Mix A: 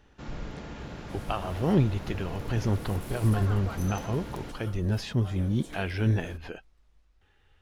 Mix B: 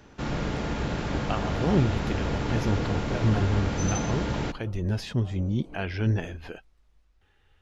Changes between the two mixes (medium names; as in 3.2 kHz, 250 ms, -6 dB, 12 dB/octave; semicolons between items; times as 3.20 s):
first sound +11.0 dB; second sound: add boxcar filter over 25 samples